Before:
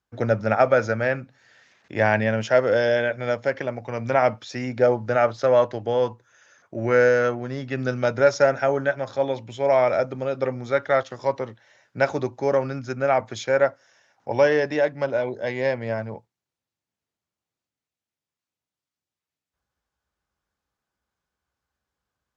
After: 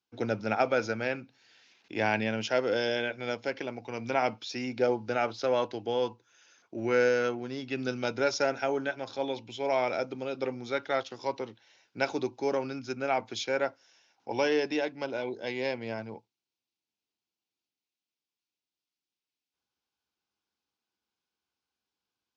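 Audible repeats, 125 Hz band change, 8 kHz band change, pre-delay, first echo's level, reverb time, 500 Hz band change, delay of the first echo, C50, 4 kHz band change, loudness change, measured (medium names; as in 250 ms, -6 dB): no echo, -12.5 dB, no reading, no reverb, no echo, no reverb, -9.5 dB, no echo, no reverb, +0.5 dB, -8.5 dB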